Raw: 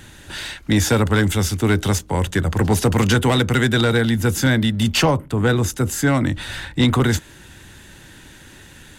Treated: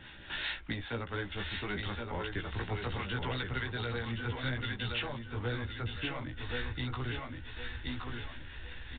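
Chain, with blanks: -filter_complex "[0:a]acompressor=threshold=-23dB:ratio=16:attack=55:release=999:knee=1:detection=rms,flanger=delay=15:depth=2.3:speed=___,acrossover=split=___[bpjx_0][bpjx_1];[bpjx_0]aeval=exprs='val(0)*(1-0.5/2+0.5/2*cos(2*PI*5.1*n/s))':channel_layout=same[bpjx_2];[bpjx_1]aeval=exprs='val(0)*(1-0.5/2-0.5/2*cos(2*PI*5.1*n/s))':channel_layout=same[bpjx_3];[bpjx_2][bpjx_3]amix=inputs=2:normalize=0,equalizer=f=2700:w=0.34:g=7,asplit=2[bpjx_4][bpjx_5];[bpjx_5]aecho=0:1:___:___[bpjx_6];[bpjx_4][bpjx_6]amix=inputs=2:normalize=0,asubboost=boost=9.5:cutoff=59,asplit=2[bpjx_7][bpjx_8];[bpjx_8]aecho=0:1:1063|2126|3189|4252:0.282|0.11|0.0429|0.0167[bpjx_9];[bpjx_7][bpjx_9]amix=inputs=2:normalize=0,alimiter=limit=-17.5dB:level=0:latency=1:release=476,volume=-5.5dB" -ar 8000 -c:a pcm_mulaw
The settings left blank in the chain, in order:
0.6, 690, 1075, 0.531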